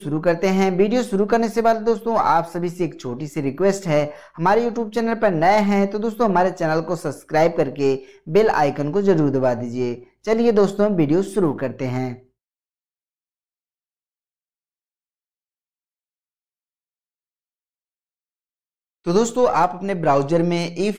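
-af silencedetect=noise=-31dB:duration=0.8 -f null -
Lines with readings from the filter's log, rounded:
silence_start: 12.15
silence_end: 19.06 | silence_duration: 6.91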